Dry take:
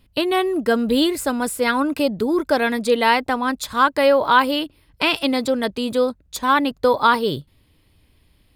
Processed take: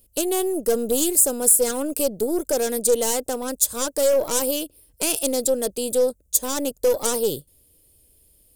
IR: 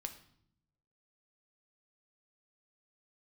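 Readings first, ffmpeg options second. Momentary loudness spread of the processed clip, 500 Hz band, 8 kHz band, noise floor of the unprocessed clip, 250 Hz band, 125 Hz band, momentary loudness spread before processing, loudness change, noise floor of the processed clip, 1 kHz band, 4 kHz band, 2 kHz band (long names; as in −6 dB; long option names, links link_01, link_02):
9 LU, −1.0 dB, +15.0 dB, −59 dBFS, −6.5 dB, can't be measured, 6 LU, −2.0 dB, −61 dBFS, −14.0 dB, −6.5 dB, −15.5 dB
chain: -af "aeval=exprs='0.794*(cos(1*acos(clip(val(0)/0.794,-1,1)))-cos(1*PI/2))+0.316*(cos(5*acos(clip(val(0)/0.794,-1,1)))-cos(5*PI/2))+0.141*(cos(8*acos(clip(val(0)/0.794,-1,1)))-cos(8*PI/2))':channel_layout=same,crystalizer=i=4.5:c=0,equalizer=frequency=125:width_type=o:width=1:gain=-5,equalizer=frequency=250:width_type=o:width=1:gain=-4,equalizer=frequency=500:width_type=o:width=1:gain=9,equalizer=frequency=1000:width_type=o:width=1:gain=-11,equalizer=frequency=2000:width_type=o:width=1:gain=-12,equalizer=frequency=4000:width_type=o:width=1:gain=-10,equalizer=frequency=8000:width_type=o:width=1:gain=6,volume=-13.5dB"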